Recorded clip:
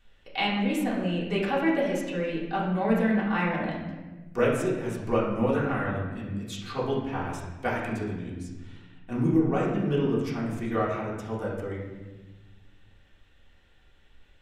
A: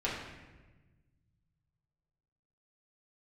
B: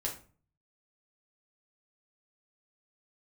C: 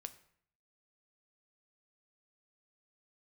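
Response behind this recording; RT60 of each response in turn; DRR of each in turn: A; 1.2, 0.40, 0.60 seconds; −8.0, −2.5, 9.5 decibels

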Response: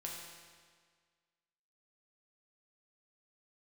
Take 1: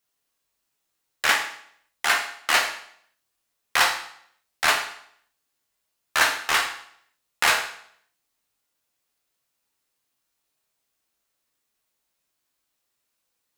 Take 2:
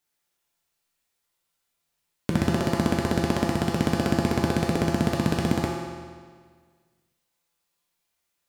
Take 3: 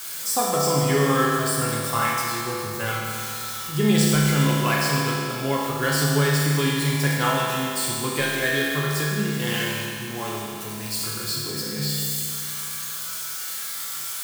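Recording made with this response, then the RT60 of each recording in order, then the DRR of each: 2; 0.65, 1.7, 2.5 seconds; 0.5, −2.5, −5.5 decibels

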